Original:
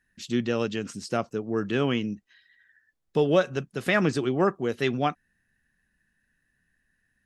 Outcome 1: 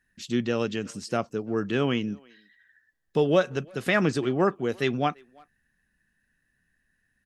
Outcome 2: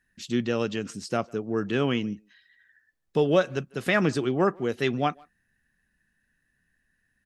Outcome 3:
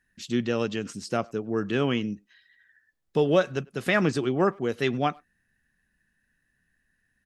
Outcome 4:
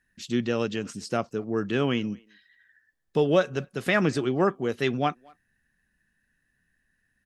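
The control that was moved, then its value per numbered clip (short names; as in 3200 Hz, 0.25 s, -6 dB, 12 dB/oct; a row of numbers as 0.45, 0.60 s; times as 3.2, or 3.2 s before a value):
speakerphone echo, time: 0.34, 0.15, 0.1, 0.23 s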